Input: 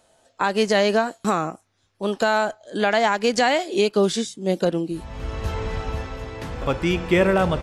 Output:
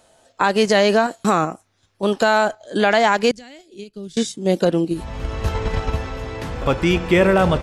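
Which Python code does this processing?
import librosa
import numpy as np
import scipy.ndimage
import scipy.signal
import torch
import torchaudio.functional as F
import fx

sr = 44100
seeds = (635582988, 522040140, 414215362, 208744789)

p1 = fx.tone_stack(x, sr, knobs='10-0-1', at=(3.31, 4.17))
p2 = fx.level_steps(p1, sr, step_db=13)
y = p1 + (p2 * 10.0 ** (2.0 / 20.0))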